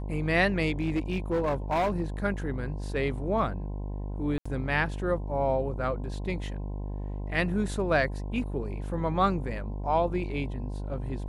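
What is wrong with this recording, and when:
buzz 50 Hz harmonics 21 -34 dBFS
0.8–2.02 clipped -22.5 dBFS
4.38–4.46 gap 75 ms

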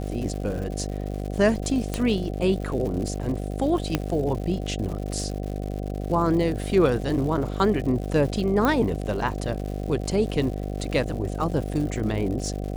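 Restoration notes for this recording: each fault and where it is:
buzz 50 Hz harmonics 15 -30 dBFS
crackle 170/s -33 dBFS
1.94 pop -12 dBFS
3.95 pop -8 dBFS
8.65 pop -10 dBFS

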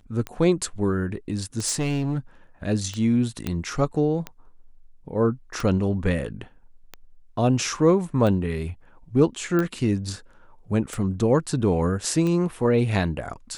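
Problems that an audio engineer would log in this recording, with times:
tick 45 rpm -17 dBFS
1.65–2.19 clipped -20.5 dBFS
3.47 pop -13 dBFS
9.59 pop -13 dBFS

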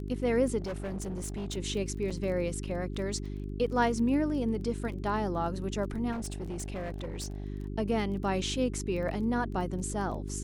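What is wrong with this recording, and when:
crackle 18/s -39 dBFS
hum 50 Hz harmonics 8 -37 dBFS
0.6–1.57 clipped -32 dBFS
2.1–2.11 gap 5.8 ms
6.11–7.44 clipped -32.5 dBFS

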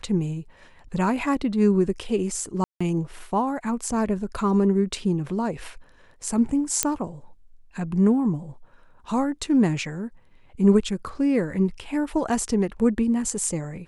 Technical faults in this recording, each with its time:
2.64–2.81 gap 0.165 s
6.83 pop -2 dBFS

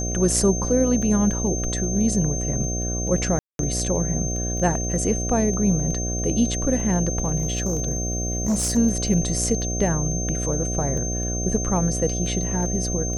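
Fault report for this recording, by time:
buzz 60 Hz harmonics 12 -27 dBFS
crackle 10/s -29 dBFS
tone 6300 Hz -28 dBFS
3.39–3.59 gap 0.202 s
7.38–8.78 clipped -18 dBFS

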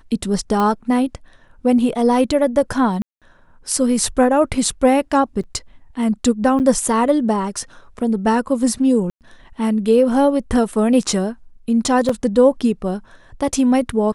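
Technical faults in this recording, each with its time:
0.6 pop -9 dBFS
3.02–3.22 gap 0.197 s
5.43–5.44 gap 7 ms
6.59–6.6 gap 9 ms
9.1–9.21 gap 0.108 s
12.09 gap 4.2 ms

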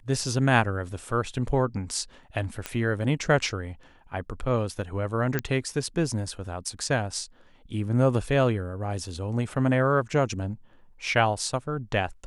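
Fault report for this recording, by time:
2.66 pop -14 dBFS
5.39 pop -11 dBFS

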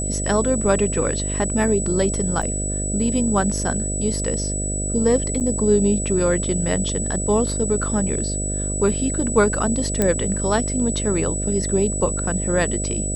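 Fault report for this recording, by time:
buzz 50 Hz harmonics 13 -26 dBFS
tone 7900 Hz -26 dBFS
2.42–2.43 gap 6.1 ms
5.4–5.41 gap 8.2 ms
10.02 pop -5 dBFS

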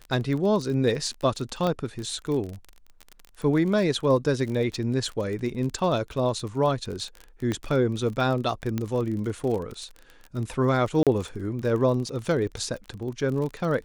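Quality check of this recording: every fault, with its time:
crackle 35/s -31 dBFS
1.67 pop -15 dBFS
7.52 pop -16 dBFS
8.78 pop -15 dBFS
11.03–11.07 gap 37 ms

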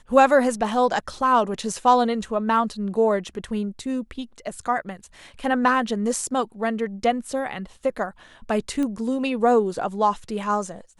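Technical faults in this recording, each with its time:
8.83 pop -17 dBFS

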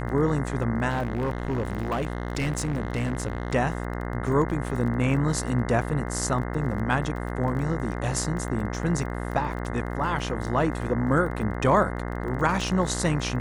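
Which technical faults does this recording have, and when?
buzz 60 Hz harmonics 35 -31 dBFS
crackle 20/s -33 dBFS
0.89–3.54 clipped -22 dBFS

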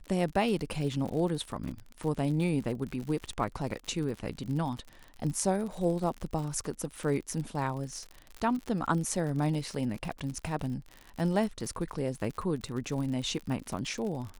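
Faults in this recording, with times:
crackle 68/s -36 dBFS

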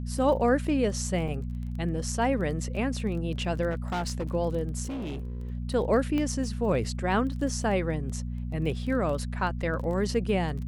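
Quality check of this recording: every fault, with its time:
crackle 20/s -36 dBFS
hum 60 Hz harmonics 4 -33 dBFS
1.28 gap 3.6 ms
3.7–4.35 clipped -26 dBFS
4.83–5.52 clipped -31 dBFS
6.18 pop -19 dBFS

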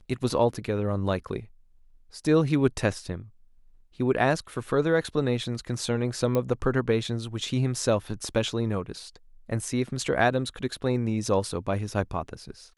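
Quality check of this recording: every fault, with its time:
6.35 pop -14 dBFS

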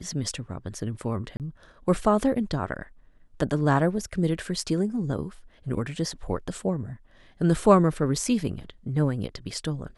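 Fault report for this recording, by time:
1.37–1.4 gap 28 ms

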